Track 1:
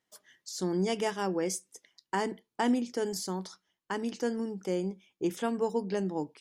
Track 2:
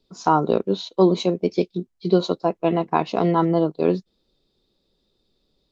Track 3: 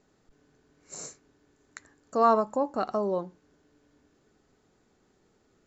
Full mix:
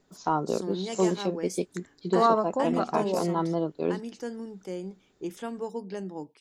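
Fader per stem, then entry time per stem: -4.5, -8.5, -0.5 dB; 0.00, 0.00, 0.00 s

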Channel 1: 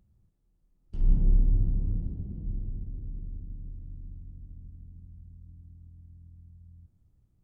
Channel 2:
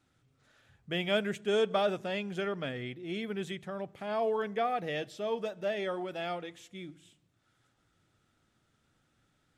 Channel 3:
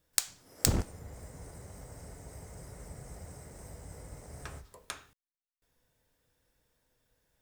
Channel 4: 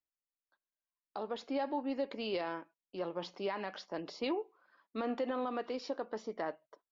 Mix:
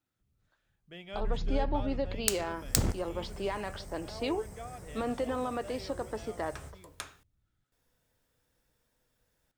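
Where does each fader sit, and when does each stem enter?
-10.5, -14.5, -0.5, +2.5 dB; 0.20, 0.00, 2.10, 0.00 s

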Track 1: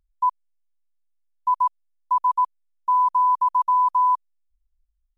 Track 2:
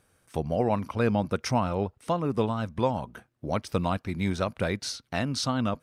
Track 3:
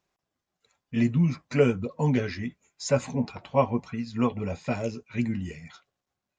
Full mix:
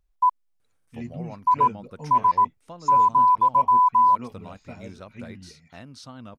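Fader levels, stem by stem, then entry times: +1.5, -14.5, -12.5 dB; 0.00, 0.60, 0.00 s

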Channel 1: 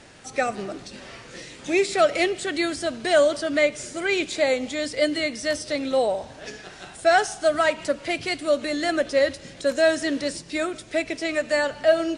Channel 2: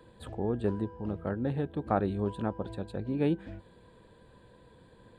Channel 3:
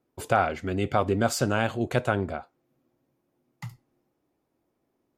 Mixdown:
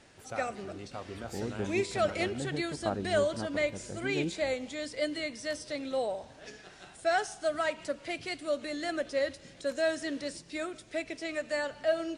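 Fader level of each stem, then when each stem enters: -10.0, -6.0, -18.0 dB; 0.00, 0.95, 0.00 s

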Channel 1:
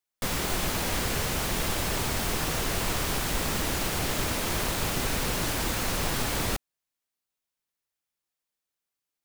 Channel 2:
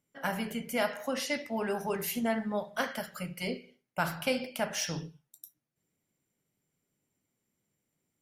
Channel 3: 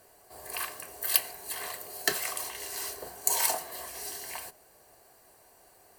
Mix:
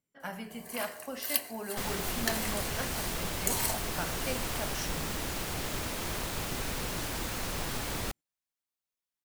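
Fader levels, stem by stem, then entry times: -6.5, -7.0, -5.0 dB; 1.55, 0.00, 0.20 s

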